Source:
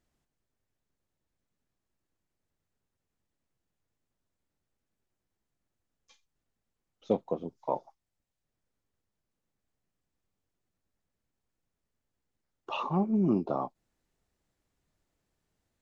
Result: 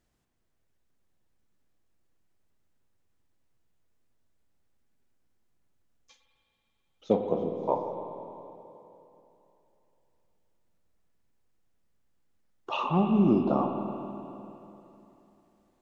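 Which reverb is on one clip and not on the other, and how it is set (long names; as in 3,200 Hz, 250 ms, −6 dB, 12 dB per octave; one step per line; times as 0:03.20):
spring reverb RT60 3.1 s, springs 49/53 ms, chirp 60 ms, DRR 4 dB
level +3 dB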